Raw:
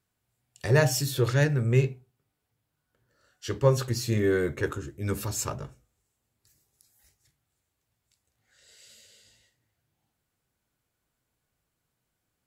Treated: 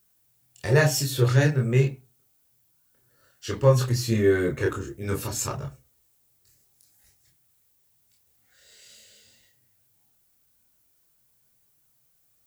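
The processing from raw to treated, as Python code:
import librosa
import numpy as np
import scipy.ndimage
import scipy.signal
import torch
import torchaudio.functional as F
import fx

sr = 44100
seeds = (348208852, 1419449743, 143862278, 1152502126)

y = fx.chorus_voices(x, sr, voices=4, hz=0.27, base_ms=27, depth_ms=4.9, mix_pct=45)
y = fx.dmg_noise_colour(y, sr, seeds[0], colour='violet', level_db=-72.0)
y = F.gain(torch.from_numpy(y), 5.5).numpy()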